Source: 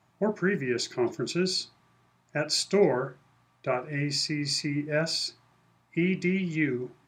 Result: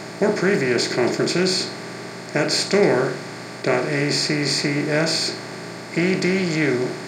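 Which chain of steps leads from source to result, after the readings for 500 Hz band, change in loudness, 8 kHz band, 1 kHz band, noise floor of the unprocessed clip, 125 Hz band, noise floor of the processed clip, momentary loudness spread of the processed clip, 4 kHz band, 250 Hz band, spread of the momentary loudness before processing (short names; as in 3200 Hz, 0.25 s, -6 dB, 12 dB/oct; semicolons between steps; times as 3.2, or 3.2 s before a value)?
+8.5 dB, +8.0 dB, +8.0 dB, +9.0 dB, -67 dBFS, +6.5 dB, -35 dBFS, 13 LU, +7.5 dB, +7.5 dB, 8 LU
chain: per-bin compression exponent 0.4; gain +2.5 dB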